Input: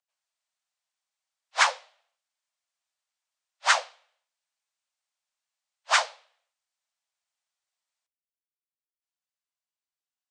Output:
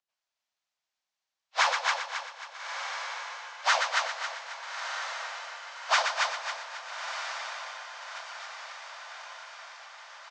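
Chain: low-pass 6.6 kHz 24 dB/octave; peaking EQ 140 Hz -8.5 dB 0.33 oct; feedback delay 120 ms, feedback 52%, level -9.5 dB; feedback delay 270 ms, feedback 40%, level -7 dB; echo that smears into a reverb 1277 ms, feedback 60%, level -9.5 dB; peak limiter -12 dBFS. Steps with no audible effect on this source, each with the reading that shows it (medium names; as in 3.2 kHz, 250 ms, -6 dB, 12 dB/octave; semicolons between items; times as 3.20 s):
peaking EQ 140 Hz: input has nothing below 450 Hz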